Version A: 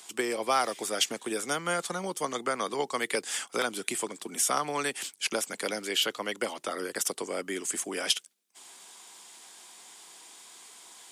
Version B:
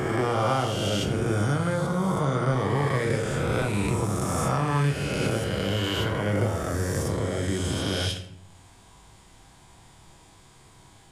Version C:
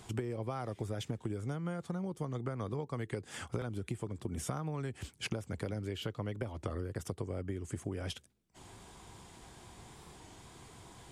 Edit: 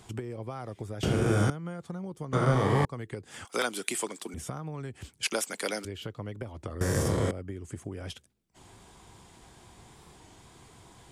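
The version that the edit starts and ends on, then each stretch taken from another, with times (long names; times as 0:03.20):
C
0:01.03–0:01.50: punch in from B
0:02.33–0:02.85: punch in from B
0:03.45–0:04.34: punch in from A
0:05.23–0:05.85: punch in from A
0:06.81–0:07.31: punch in from B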